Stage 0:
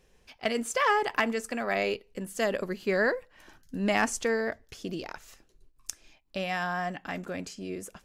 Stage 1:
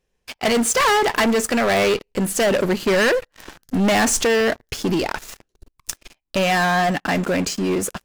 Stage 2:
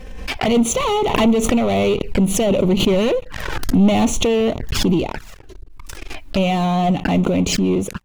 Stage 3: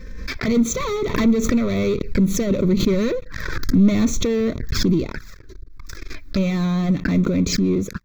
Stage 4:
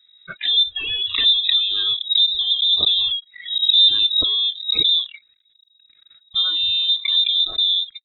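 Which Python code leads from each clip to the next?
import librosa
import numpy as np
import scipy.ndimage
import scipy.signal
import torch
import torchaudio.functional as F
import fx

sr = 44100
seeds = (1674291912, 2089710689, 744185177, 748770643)

y1 = fx.leveller(x, sr, passes=5)
y2 = fx.bass_treble(y1, sr, bass_db=7, treble_db=-9)
y2 = fx.env_flanger(y2, sr, rest_ms=3.9, full_db=-17.5)
y2 = fx.pre_swell(y2, sr, db_per_s=39.0)
y2 = y2 * librosa.db_to_amplitude(1.0)
y3 = fx.fixed_phaser(y2, sr, hz=2900.0, stages=6)
y4 = fx.spec_repair(y3, sr, seeds[0], start_s=3.47, length_s=0.34, low_hz=430.0, high_hz=1700.0, source='after')
y4 = fx.noise_reduce_blind(y4, sr, reduce_db=24)
y4 = fx.freq_invert(y4, sr, carrier_hz=3800)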